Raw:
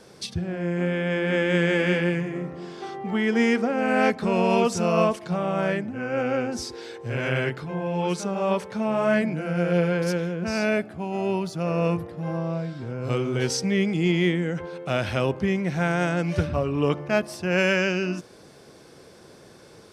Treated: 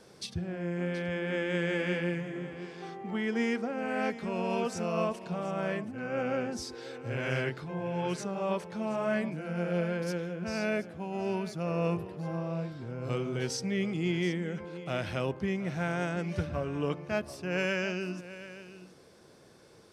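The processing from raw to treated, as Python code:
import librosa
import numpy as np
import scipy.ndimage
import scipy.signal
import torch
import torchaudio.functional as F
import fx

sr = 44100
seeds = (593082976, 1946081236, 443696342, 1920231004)

y = fx.rider(x, sr, range_db=3, speed_s=2.0)
y = y + 10.0 ** (-15.0 / 20.0) * np.pad(y, (int(725 * sr / 1000.0), 0))[:len(y)]
y = F.gain(torch.from_numpy(y), -8.5).numpy()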